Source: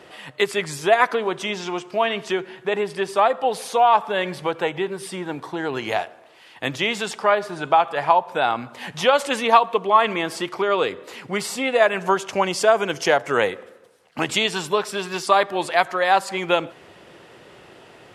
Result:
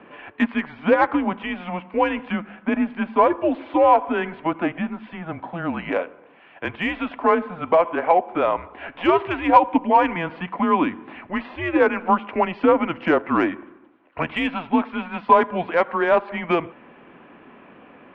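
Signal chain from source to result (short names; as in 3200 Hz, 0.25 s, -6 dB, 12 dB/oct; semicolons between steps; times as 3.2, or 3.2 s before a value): mistuned SSB -170 Hz 250–3200 Hz; overdrive pedal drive 11 dB, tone 1000 Hz, clips at -1.5 dBFS; small resonant body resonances 260/1000/2300 Hz, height 7 dB; gain -1.5 dB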